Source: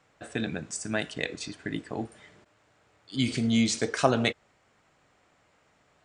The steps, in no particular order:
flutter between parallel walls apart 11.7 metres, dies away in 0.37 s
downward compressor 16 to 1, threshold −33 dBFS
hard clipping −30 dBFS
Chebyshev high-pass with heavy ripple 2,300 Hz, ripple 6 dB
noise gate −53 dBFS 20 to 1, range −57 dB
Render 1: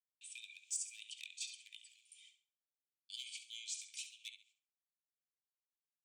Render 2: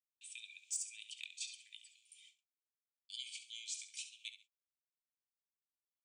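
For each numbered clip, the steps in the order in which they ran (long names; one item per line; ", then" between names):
noise gate, then downward compressor, then flutter between parallel walls, then hard clipping, then Chebyshev high-pass with heavy ripple
downward compressor, then flutter between parallel walls, then noise gate, then Chebyshev high-pass with heavy ripple, then hard clipping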